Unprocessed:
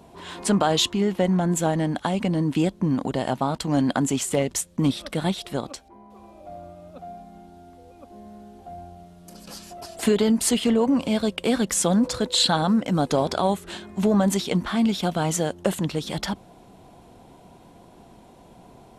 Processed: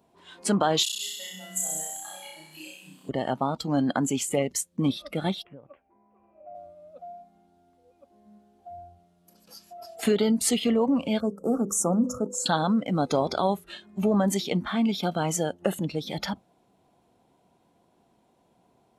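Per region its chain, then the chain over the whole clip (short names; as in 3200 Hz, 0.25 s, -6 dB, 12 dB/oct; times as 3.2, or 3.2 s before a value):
0.83–3.09 regenerating reverse delay 0.102 s, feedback 65%, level -6 dB + pre-emphasis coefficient 0.97 + flutter echo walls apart 5.5 m, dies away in 1.5 s
5.43–6.55 steep low-pass 2800 Hz 72 dB/oct + compressor 8:1, threshold -35 dBFS
11.2–12.46 elliptic band-stop 1300–6100 Hz, stop band 50 dB + bell 290 Hz +3 dB 0.49 oct + notches 50/100/150/200/250/300/350/400/450/500 Hz
whole clip: HPF 130 Hz 6 dB/oct; spectral noise reduction 13 dB; gain -2 dB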